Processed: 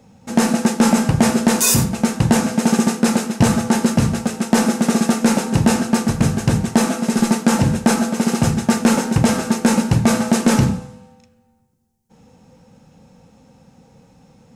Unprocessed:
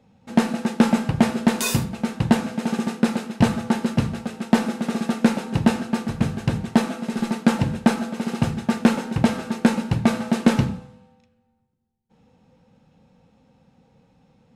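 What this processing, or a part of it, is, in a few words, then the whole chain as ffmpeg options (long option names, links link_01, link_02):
over-bright horn tweeter: -af "highshelf=frequency=4800:width_type=q:width=1.5:gain=6.5,alimiter=limit=-13dB:level=0:latency=1:release=35,volume=8.5dB"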